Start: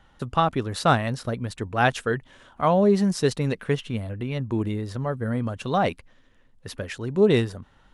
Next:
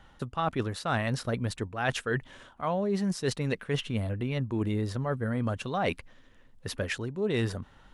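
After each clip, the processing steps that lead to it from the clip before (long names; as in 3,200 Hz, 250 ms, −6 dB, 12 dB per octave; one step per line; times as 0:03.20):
dynamic equaliser 1,900 Hz, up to +3 dB, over −37 dBFS, Q 0.77
reversed playback
downward compressor 10 to 1, threshold −27 dBFS, peak gain reduction 15 dB
reversed playback
level +1.5 dB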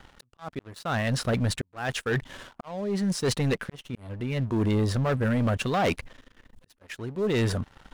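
volume swells 741 ms
leveller curve on the samples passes 3
level −2.5 dB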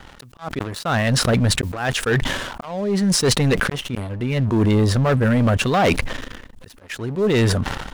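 level that may fall only so fast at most 44 dB per second
level +7.5 dB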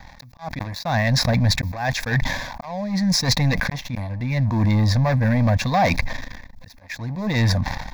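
phaser with its sweep stopped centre 2,000 Hz, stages 8
level +1.5 dB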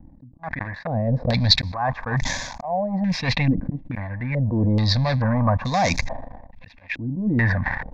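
low-pass on a step sequencer 2.3 Hz 300–6,600 Hz
level −2.5 dB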